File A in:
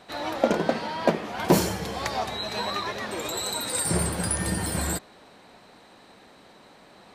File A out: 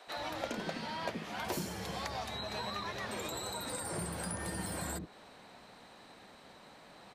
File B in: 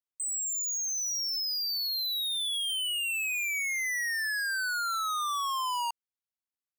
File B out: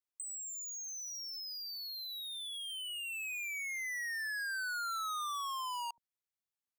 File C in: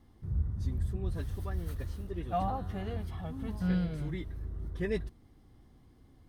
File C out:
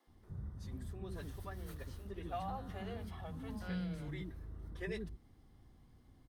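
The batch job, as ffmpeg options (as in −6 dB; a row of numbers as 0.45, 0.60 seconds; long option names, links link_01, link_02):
-filter_complex "[0:a]acrossover=split=350[link_01][link_02];[link_01]adelay=70[link_03];[link_03][link_02]amix=inputs=2:normalize=0,acrossover=split=190|1600[link_04][link_05][link_06];[link_04]acompressor=threshold=-43dB:ratio=4[link_07];[link_05]acompressor=threshold=-37dB:ratio=4[link_08];[link_06]acompressor=threshold=-40dB:ratio=4[link_09];[link_07][link_08][link_09]amix=inputs=3:normalize=0,volume=-3dB"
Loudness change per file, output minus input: −12.0, −9.0, −9.0 LU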